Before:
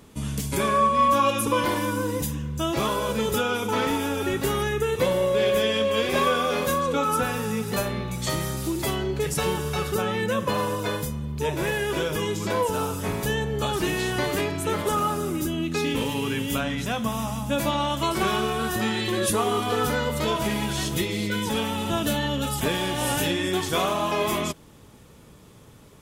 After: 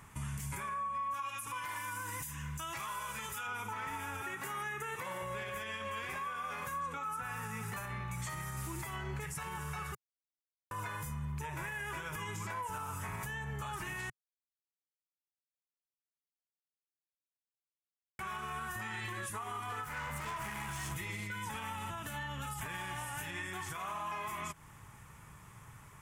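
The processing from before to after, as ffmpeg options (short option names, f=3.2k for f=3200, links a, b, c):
-filter_complex "[0:a]asettb=1/sr,asplit=3[a][b][c];[a]atrim=end=1.144[d];[b]atrim=start=1.14:end=3.47,asetpts=PTS-STARTPTS,afade=t=in:d=0.004:c=qsin,afade=t=out:st=2.326:d=0.004:c=qsin,tiltshelf=f=1.3k:g=-6[e];[c]atrim=start=3.466[f];[d][e]acrossfade=d=0.004:c1=hsin:c2=qsin[g];[g][f]acrossfade=d=0.004:c1=qsin:c2=hsin,asettb=1/sr,asplit=3[h][i][j];[h]atrim=end=4.214[k];[i]atrim=start=4.21:end=5.22,asetpts=PTS-STARTPTS,afade=t=in:d=0.004:c=qsin,afade=t=out:st=1.006:d=0.004:c=qsin,highpass=210[l];[j]atrim=start=5.216[m];[k][l]acrossfade=d=0.004:c1=hsin:c2=qsin[n];[n][m]acrossfade=d=0.004:c1=qsin:c2=hsin,asettb=1/sr,asplit=3[o][p][q];[o]atrim=end=19.844[r];[p]atrim=start=19.84:end=20.94,asetpts=PTS-STARTPTS,afade=t=in:d=0.004:c=qsin,afade=t=out:st=1.096:d=0.004:c=qsin,asoftclip=type=hard:threshold=-28.5dB[s];[q]atrim=start=20.936[t];[r][s]acrossfade=d=0.004:c1=hsin:c2=qsin[u];[u][t]acrossfade=d=0.004:c1=qsin:c2=hsin,asplit=5[v][w][x][y][z];[v]atrim=end=9.95,asetpts=PTS-STARTPTS,afade=t=out:st=9.946:d=0.004:c=hsin[aa];[w]atrim=start=9.95:end=10.71,asetpts=PTS-STARTPTS,volume=0[ab];[x]atrim=start=10.71:end=14.1,asetpts=PTS-STARTPTS,afade=t=in:d=0.004:c=hsin,afade=t=out:st=3.386:d=0.004:c=hsin[ac];[y]atrim=start=14.1:end=18.19,asetpts=PTS-STARTPTS,volume=0[ad];[z]atrim=start=18.19,asetpts=PTS-STARTPTS,afade=t=in:d=0.004:c=hsin[ae];[aa][ab][ac][ad][ae]concat=n=5:v=0:a=1,equalizer=f=125:t=o:w=1:g=5,equalizer=f=250:t=o:w=1:g=-9,equalizer=f=500:t=o:w=1:g=-11,equalizer=f=1k:t=o:w=1:g=8,equalizer=f=2k:t=o:w=1:g=8,equalizer=f=4k:t=o:w=1:g=-10,equalizer=f=8k:t=o:w=1:g=4,acompressor=threshold=-30dB:ratio=12,alimiter=level_in=3dB:limit=-24dB:level=0:latency=1:release=71,volume=-3dB,volume=-4.5dB"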